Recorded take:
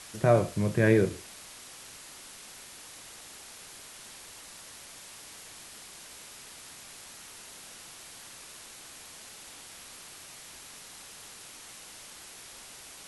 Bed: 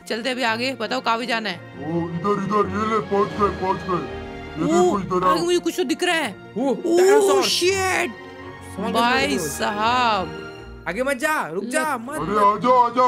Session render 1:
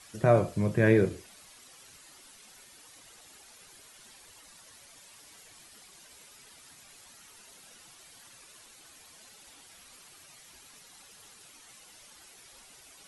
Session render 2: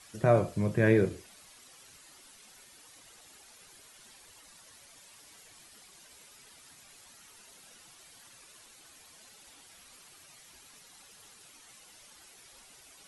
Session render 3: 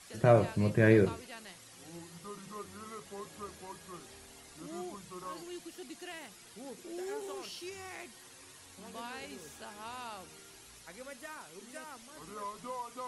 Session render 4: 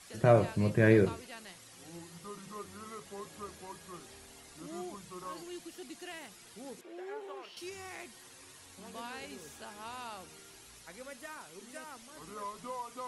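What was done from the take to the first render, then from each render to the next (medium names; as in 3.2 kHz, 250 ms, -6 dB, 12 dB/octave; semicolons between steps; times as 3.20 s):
noise reduction 10 dB, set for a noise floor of -48 dBFS
trim -1.5 dB
add bed -25.5 dB
6.81–7.57 s: three-band isolator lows -15 dB, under 360 Hz, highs -18 dB, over 3.2 kHz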